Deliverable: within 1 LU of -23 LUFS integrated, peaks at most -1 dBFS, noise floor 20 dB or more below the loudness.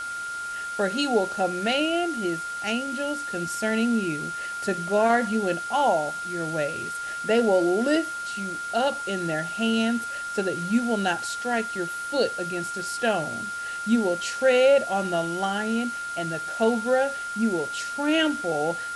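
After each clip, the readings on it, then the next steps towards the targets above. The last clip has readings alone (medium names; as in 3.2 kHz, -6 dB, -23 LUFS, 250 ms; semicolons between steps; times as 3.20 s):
steady tone 1.4 kHz; tone level -30 dBFS; noise floor -33 dBFS; noise floor target -46 dBFS; loudness -25.5 LUFS; peak level -9.0 dBFS; loudness target -23.0 LUFS
-> band-stop 1.4 kHz, Q 30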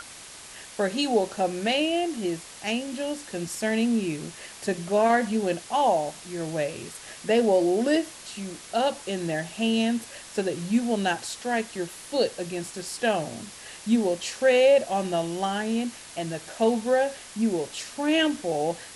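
steady tone not found; noise floor -44 dBFS; noise floor target -46 dBFS
-> noise reduction 6 dB, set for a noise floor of -44 dBFS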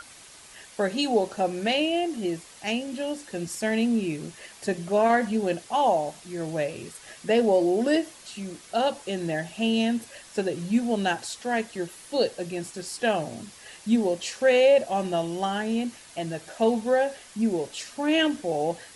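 noise floor -49 dBFS; loudness -26.0 LUFS; peak level -9.5 dBFS; loudness target -23.0 LUFS
-> trim +3 dB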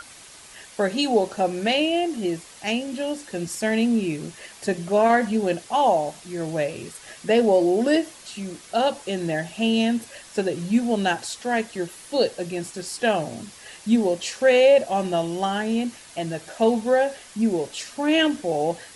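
loudness -23.0 LUFS; peak level -6.5 dBFS; noise floor -46 dBFS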